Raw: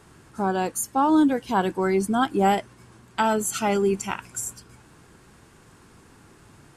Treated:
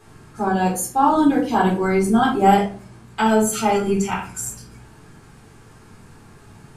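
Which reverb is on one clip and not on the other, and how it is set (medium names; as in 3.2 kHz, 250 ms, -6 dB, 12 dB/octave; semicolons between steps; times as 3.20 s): simulated room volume 280 m³, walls furnished, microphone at 3.9 m; trim -3 dB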